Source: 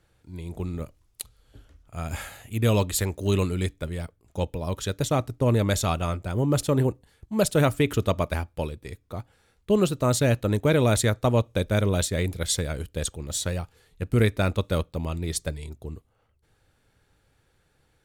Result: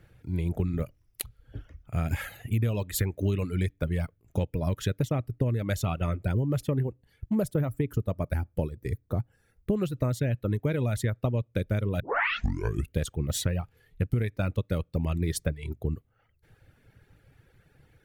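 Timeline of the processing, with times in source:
7.35–9.76 s: peaking EQ 2.9 kHz -9.5 dB 1.8 oct
12.00 s: tape start 0.96 s
whole clip: reverb removal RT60 0.86 s; graphic EQ 125/1000/2000/4000/8000 Hz +6/-6/+3/-6/-10 dB; compression 12:1, threshold -31 dBFS; trim +7.5 dB

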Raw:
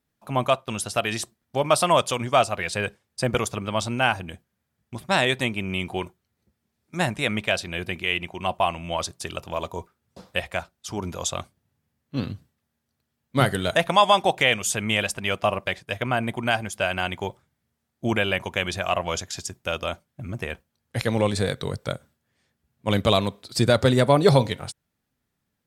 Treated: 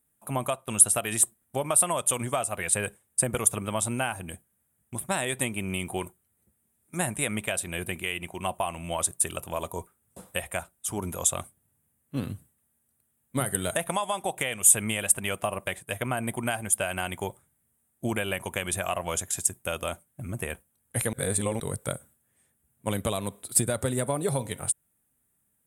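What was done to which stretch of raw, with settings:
21.13–21.60 s: reverse
whole clip: band-stop 4.4 kHz, Q 14; compression 10:1, threshold -22 dBFS; resonant high shelf 7 kHz +12 dB, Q 3; trim -2 dB

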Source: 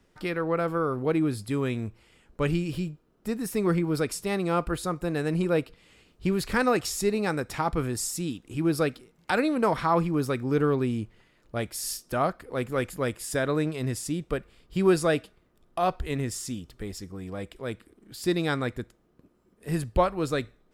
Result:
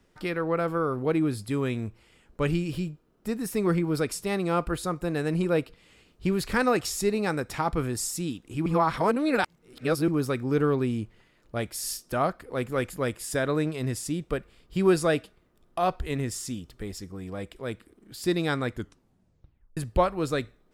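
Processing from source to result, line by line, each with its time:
8.66–10.08 s: reverse
18.72 s: tape stop 1.05 s

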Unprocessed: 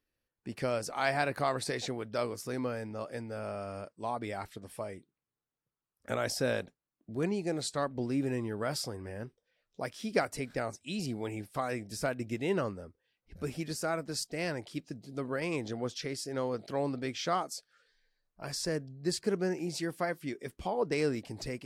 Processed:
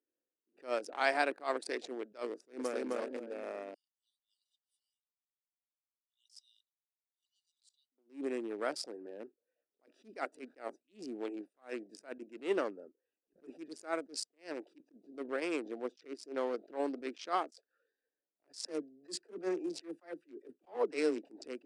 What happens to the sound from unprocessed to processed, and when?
2.33–2.82 s: echo throw 260 ms, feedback 45%, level -0.5 dB
3.74–7.92 s: brick-wall FIR high-pass 2.8 kHz
18.66–21.19 s: phase dispersion lows, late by 46 ms, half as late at 310 Hz
whole clip: local Wiener filter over 41 samples; elliptic band-pass 300–9700 Hz, stop band 40 dB; attacks held to a fixed rise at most 240 dB/s; trim +1 dB

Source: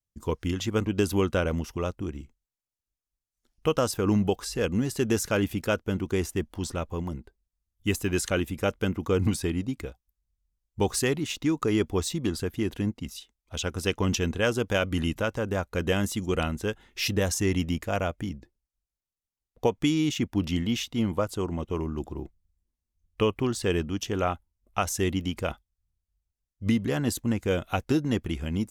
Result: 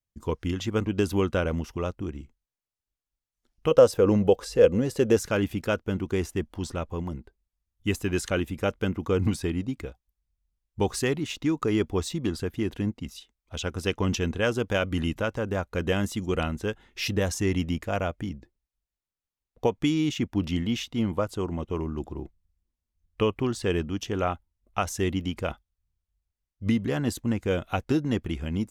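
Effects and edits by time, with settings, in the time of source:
3.71–5.17 s: peaking EQ 510 Hz +14.5 dB 0.42 oct
whole clip: treble shelf 6.1 kHz -7 dB

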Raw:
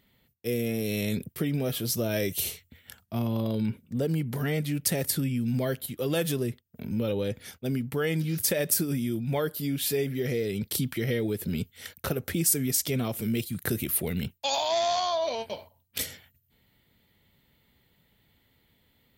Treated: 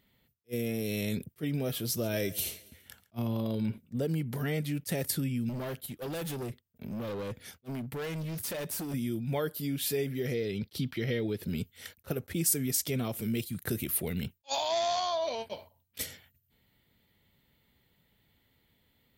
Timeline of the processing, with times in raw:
1.79–3.78 s: feedback delay 138 ms, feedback 47%, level -20 dB
5.49–8.94 s: overload inside the chain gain 30.5 dB
10.34–11.43 s: resonant high shelf 6.1 kHz -8.5 dB, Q 1.5
whole clip: attacks held to a fixed rise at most 560 dB/s; trim -3.5 dB

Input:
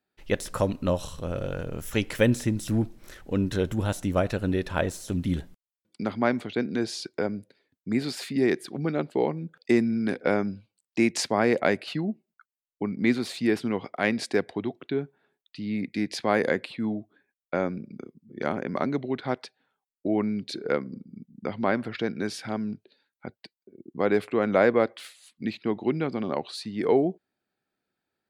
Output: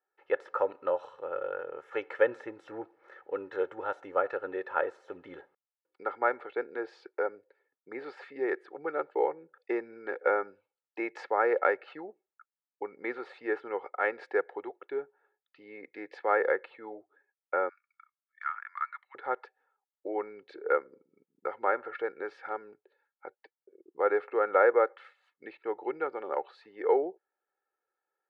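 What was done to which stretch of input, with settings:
17.69–19.15 s: Chebyshev high-pass 1.1 kHz, order 5
whole clip: Chebyshev band-pass 530–1600 Hz, order 2; comb 2.3 ms, depth 70%; dynamic bell 1.4 kHz, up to +5 dB, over -46 dBFS, Q 5.9; trim -2 dB

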